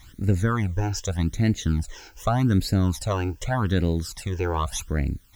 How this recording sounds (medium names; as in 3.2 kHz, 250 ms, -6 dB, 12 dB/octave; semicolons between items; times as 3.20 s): a quantiser's noise floor 10-bit, dither triangular; phasing stages 12, 0.84 Hz, lowest notch 190–1100 Hz